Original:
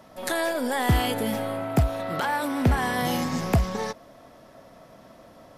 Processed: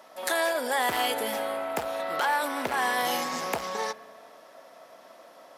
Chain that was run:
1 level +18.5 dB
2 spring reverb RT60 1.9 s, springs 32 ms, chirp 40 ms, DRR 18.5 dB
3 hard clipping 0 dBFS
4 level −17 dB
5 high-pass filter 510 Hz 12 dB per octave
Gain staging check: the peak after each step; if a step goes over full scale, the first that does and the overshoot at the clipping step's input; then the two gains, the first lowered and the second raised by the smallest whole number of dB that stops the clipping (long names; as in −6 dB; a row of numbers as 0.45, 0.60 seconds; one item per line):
+6.5, +7.0, 0.0, −17.0, −12.0 dBFS
step 1, 7.0 dB
step 1 +11.5 dB, step 4 −10 dB